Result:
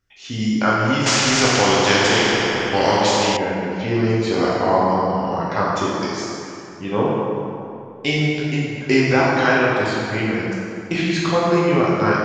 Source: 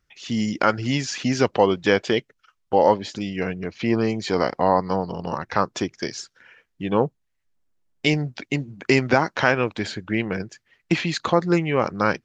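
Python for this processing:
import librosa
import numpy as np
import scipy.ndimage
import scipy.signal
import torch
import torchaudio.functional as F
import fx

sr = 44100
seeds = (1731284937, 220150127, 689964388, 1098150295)

y = fx.rev_plate(x, sr, seeds[0], rt60_s=2.7, hf_ratio=0.65, predelay_ms=0, drr_db=-6.5)
y = fx.spectral_comp(y, sr, ratio=2.0, at=(1.06, 3.37))
y = y * 10.0 ** (-3.5 / 20.0)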